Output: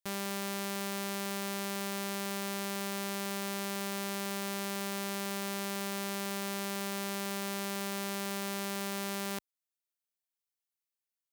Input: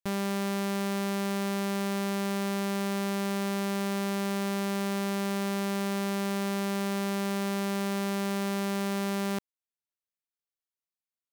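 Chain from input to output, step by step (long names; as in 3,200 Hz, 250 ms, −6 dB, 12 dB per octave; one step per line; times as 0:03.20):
spectral tilt +2 dB per octave
level −4.5 dB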